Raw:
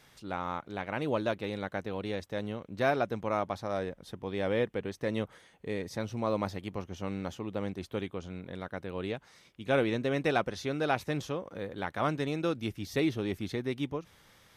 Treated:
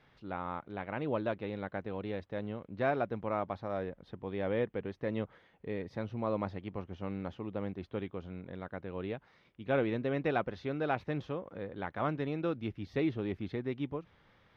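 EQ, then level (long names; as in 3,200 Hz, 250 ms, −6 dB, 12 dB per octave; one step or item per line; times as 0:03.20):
high-frequency loss of the air 320 metres
−2.0 dB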